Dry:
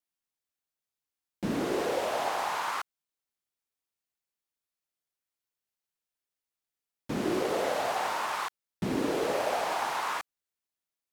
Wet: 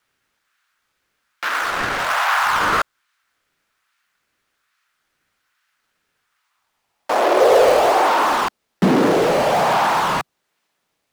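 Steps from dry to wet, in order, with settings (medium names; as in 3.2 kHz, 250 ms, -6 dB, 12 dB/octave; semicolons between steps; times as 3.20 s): dynamic bell 2.2 kHz, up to -4 dB, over -46 dBFS, Q 1.2; overdrive pedal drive 25 dB, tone 2.2 kHz, clips at -18 dBFS; high-pass sweep 1.4 kHz -> 150 Hz, 6.20–9.07 s; in parallel at -7.5 dB: decimation with a swept rate 14×, swing 160% 1.2 Hz; on the sum: loudspeaker Doppler distortion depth 0.32 ms; trim +5.5 dB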